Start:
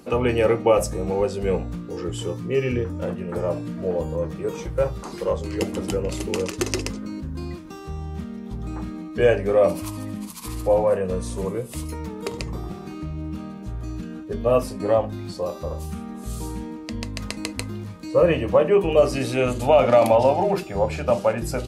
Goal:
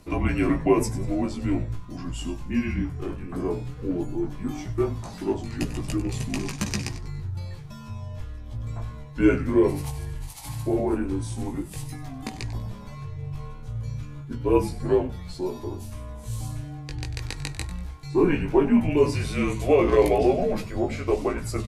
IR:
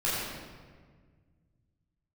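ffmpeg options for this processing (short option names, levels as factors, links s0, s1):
-filter_complex "[0:a]asplit=4[s0][s1][s2][s3];[s1]adelay=96,afreqshift=-130,volume=0.2[s4];[s2]adelay=192,afreqshift=-260,volume=0.0661[s5];[s3]adelay=288,afreqshift=-390,volume=0.0216[s6];[s0][s4][s5][s6]amix=inputs=4:normalize=0,flanger=delay=15.5:depth=4.5:speed=0.14,afreqshift=-170"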